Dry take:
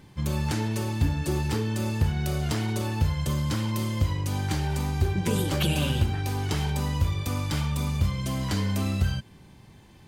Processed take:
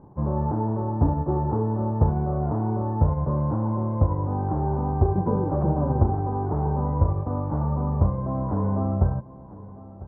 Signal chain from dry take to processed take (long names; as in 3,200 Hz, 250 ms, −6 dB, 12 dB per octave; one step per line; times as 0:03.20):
spectral envelope flattened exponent 0.6
Butterworth low-pass 990 Hz 36 dB per octave
single-tap delay 999 ms −18.5 dB
level +4 dB